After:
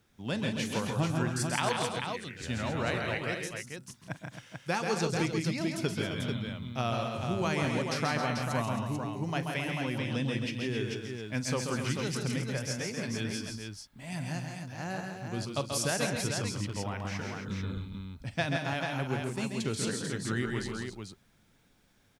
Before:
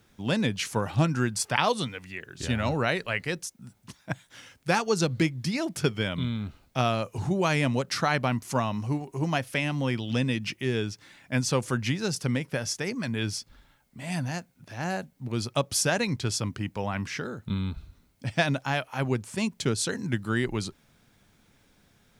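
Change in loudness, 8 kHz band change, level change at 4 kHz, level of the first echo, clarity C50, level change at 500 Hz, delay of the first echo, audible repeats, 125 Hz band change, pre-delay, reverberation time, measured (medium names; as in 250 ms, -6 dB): -4.5 dB, -4.0 dB, -4.0 dB, -16.0 dB, no reverb, -4.0 dB, 43 ms, 6, -4.0 dB, no reverb, no reverb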